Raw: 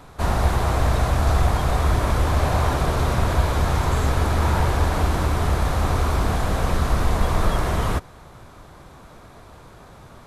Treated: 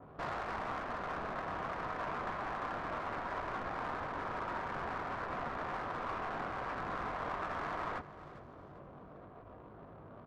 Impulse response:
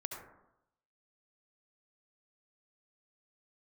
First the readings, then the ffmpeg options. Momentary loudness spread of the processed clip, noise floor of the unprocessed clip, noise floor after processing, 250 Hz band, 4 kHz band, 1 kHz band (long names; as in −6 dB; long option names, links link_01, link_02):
15 LU, −45 dBFS, −53 dBFS, −18.5 dB, −20.5 dB, −12.0 dB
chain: -filter_complex "[0:a]highpass=frequency=220:poles=1,bandreject=frequency=860:width=12,alimiter=limit=-22.5dB:level=0:latency=1:release=82,flanger=delay=19:depth=2.4:speed=0.51,acrossover=split=680|3100[link_01][link_02][link_03];[link_01]aeval=exprs='(mod(79.4*val(0)+1,2)-1)/79.4':channel_layout=same[link_04];[link_03]acrusher=samples=17:mix=1:aa=0.000001:lfo=1:lforange=10.2:lforate=1.5[link_05];[link_04][link_02][link_05]amix=inputs=3:normalize=0,adynamicsmooth=sensitivity=6:basefreq=770,asplit=2[link_06][link_07];[link_07]aecho=0:1:400|800|1200:0.141|0.0424|0.0127[link_08];[link_06][link_08]amix=inputs=2:normalize=0,adynamicequalizer=threshold=0.00141:dfrequency=3000:dqfactor=0.7:tfrequency=3000:tqfactor=0.7:attack=5:release=100:ratio=0.375:range=3.5:mode=cutabove:tftype=highshelf"